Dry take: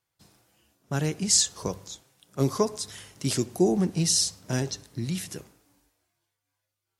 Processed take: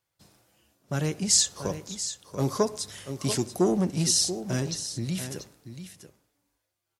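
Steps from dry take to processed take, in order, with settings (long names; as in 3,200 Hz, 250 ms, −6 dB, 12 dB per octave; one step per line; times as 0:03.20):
parametric band 570 Hz +5 dB 0.21 octaves
single-tap delay 686 ms −11.5 dB
saturating transformer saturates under 520 Hz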